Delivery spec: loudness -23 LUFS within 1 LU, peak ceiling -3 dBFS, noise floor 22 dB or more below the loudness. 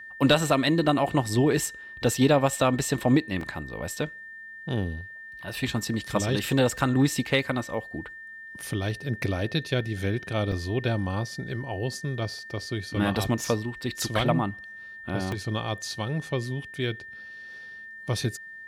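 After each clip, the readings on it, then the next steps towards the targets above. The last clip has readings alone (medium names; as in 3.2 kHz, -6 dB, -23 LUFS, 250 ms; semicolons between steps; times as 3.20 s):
dropouts 4; longest dropout 2.8 ms; steady tone 1.8 kHz; tone level -40 dBFS; loudness -27.0 LUFS; peak level -9.5 dBFS; loudness target -23.0 LUFS
-> interpolate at 3.41/8.62/10.52/15.32 s, 2.8 ms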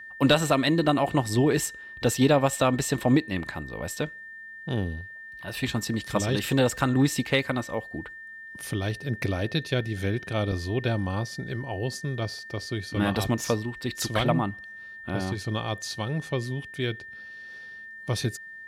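dropouts 0; steady tone 1.8 kHz; tone level -40 dBFS
-> band-stop 1.8 kHz, Q 30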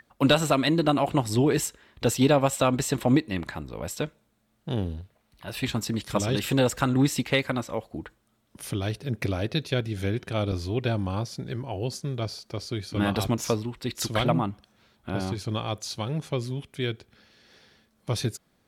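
steady tone not found; loudness -27.0 LUFS; peak level -9.5 dBFS; loudness target -23.0 LUFS
-> trim +4 dB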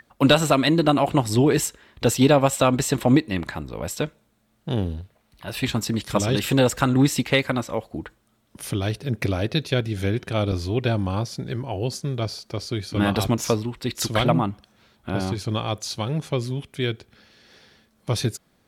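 loudness -23.0 LUFS; peak level -5.5 dBFS; noise floor -65 dBFS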